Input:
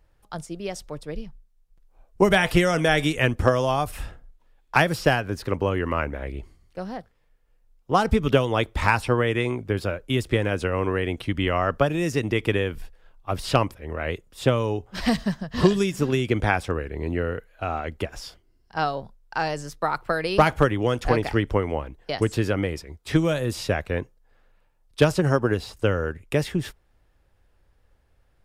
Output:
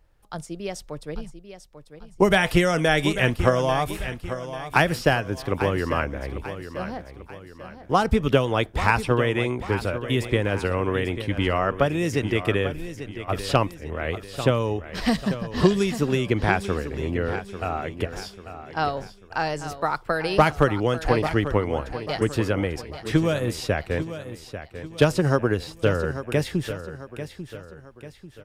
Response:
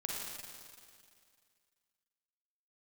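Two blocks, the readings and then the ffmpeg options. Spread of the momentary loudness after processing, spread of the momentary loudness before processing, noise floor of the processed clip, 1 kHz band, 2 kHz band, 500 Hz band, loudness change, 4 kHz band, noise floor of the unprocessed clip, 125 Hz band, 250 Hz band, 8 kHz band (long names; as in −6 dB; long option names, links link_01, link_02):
16 LU, 15 LU, −48 dBFS, +0.5 dB, +0.5 dB, +0.5 dB, 0.0 dB, +0.5 dB, −63 dBFS, +0.5 dB, +0.5 dB, +0.5 dB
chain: -af "aecho=1:1:843|1686|2529|3372:0.266|0.112|0.0469|0.0197"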